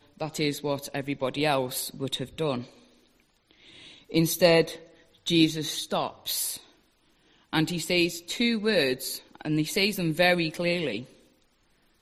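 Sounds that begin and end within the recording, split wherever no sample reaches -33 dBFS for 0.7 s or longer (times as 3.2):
4.12–6.56
7.53–11.02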